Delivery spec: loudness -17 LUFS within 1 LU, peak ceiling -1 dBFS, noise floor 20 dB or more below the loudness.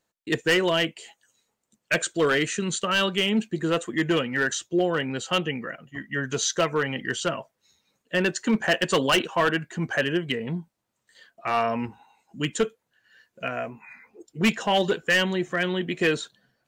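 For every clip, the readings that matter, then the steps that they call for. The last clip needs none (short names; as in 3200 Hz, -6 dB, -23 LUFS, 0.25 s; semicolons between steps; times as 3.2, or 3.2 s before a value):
clipped 1.0%; flat tops at -15.5 dBFS; loudness -25.0 LUFS; peak -15.5 dBFS; loudness target -17.0 LUFS
-> clip repair -15.5 dBFS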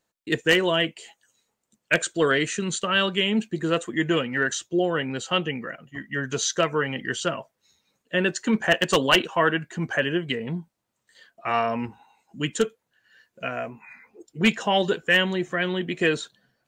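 clipped 0.0%; loudness -24.5 LUFS; peak -6.5 dBFS; loudness target -17.0 LUFS
-> gain +7.5 dB; limiter -1 dBFS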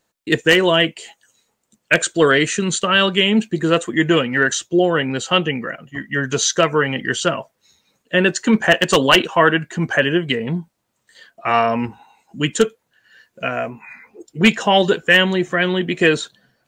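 loudness -17.0 LUFS; peak -1.0 dBFS; noise floor -72 dBFS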